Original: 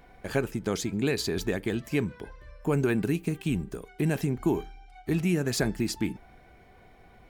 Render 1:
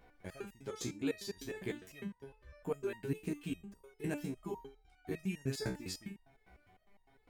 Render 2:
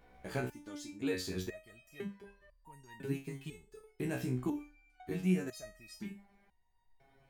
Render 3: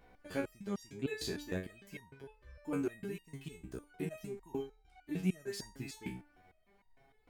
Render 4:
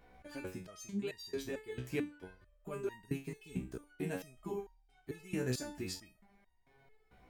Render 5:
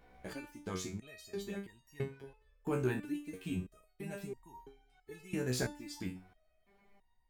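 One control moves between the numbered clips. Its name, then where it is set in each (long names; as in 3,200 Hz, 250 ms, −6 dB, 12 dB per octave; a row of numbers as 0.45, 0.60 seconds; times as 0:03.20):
step-sequenced resonator, speed: 9.9, 2, 6.6, 4.5, 3 Hertz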